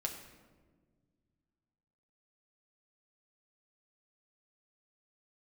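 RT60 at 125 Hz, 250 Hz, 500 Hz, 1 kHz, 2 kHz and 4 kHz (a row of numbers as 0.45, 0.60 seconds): 2.9, 2.6, 1.8, 1.2, 1.0, 0.80 seconds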